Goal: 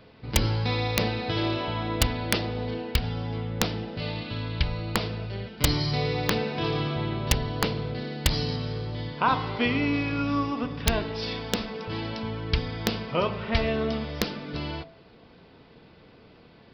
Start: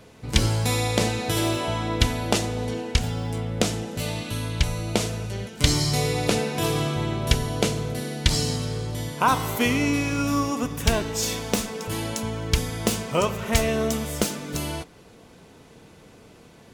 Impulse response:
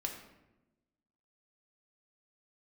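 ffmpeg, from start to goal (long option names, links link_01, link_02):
-af "aresample=11025,aresample=44100,aeval=exprs='(mod(2.11*val(0)+1,2)-1)/2.11':channel_layout=same,bandreject=frequency=50.93:width_type=h:width=4,bandreject=frequency=101.86:width_type=h:width=4,bandreject=frequency=152.79:width_type=h:width=4,bandreject=frequency=203.72:width_type=h:width=4,bandreject=frequency=254.65:width_type=h:width=4,bandreject=frequency=305.58:width_type=h:width=4,bandreject=frequency=356.51:width_type=h:width=4,bandreject=frequency=407.44:width_type=h:width=4,bandreject=frequency=458.37:width_type=h:width=4,bandreject=frequency=509.3:width_type=h:width=4,bandreject=frequency=560.23:width_type=h:width=4,bandreject=frequency=611.16:width_type=h:width=4,bandreject=frequency=662.09:width_type=h:width=4,bandreject=frequency=713.02:width_type=h:width=4,bandreject=frequency=763.95:width_type=h:width=4,bandreject=frequency=814.88:width_type=h:width=4,bandreject=frequency=865.81:width_type=h:width=4,bandreject=frequency=916.74:width_type=h:width=4,bandreject=frequency=967.67:width_type=h:width=4,bandreject=frequency=1018.6:width_type=h:width=4,bandreject=frequency=1069.53:width_type=h:width=4,volume=-2.5dB"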